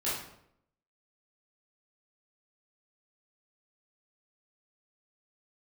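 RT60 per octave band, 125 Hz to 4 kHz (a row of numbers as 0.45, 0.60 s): 0.80, 0.80, 0.80, 0.70, 0.60, 0.50 s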